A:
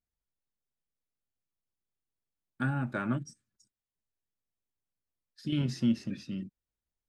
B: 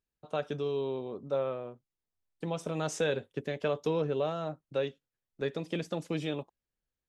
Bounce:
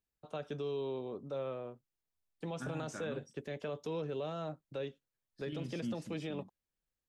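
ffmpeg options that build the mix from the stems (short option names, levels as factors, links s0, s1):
-filter_complex "[0:a]volume=0.251[s0];[1:a]acrossover=split=380|2200[s1][s2][s3];[s1]acompressor=threshold=0.0141:ratio=4[s4];[s2]acompressor=threshold=0.0158:ratio=4[s5];[s3]acompressor=threshold=0.00355:ratio=4[s6];[s4][s5][s6]amix=inputs=3:normalize=0,volume=0.75[s7];[s0][s7]amix=inputs=2:normalize=0,alimiter=level_in=2.11:limit=0.0631:level=0:latency=1:release=10,volume=0.473"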